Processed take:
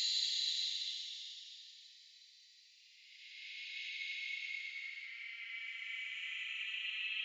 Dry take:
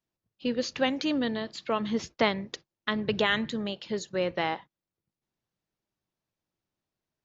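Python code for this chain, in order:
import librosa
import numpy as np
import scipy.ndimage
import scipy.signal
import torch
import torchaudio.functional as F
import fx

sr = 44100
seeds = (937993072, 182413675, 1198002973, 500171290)

y = scipy.signal.sosfilt(scipy.signal.cheby1(6, 1.0, 2000.0, 'highpass', fs=sr, output='sos'), x)
y = fx.paulstretch(y, sr, seeds[0], factor=45.0, window_s=0.05, from_s=1.58)
y = y * librosa.db_to_amplitude(2.5)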